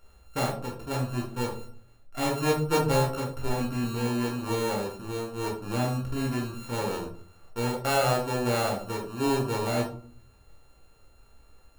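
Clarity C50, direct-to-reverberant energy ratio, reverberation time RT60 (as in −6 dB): 7.0 dB, −2.5 dB, 0.50 s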